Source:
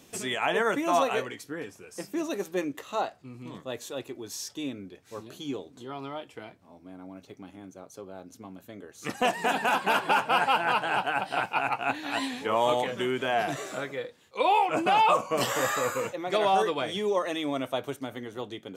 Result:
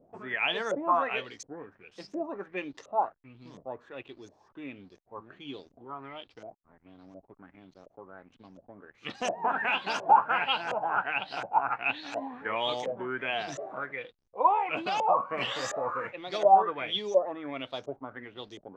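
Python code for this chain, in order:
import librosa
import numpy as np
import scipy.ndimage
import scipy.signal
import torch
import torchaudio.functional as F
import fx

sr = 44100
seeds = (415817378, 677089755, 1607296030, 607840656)

y = fx.backlash(x, sr, play_db=-46.5)
y = fx.filter_lfo_lowpass(y, sr, shape='saw_up', hz=1.4, low_hz=540.0, high_hz=6700.0, q=6.4)
y = y * 10.0 ** (-8.0 / 20.0)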